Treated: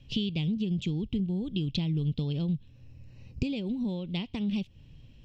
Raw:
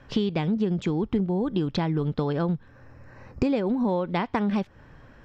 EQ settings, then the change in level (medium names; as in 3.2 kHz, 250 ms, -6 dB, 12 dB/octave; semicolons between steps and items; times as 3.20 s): FFT filter 140 Hz 0 dB, 1.6 kHz -28 dB, 2.8 kHz +4 dB, 5.1 kHz -3 dB; 0.0 dB